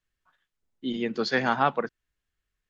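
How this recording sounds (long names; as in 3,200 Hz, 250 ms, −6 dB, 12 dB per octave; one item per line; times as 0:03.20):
background noise floor −85 dBFS
spectral slope −3.0 dB per octave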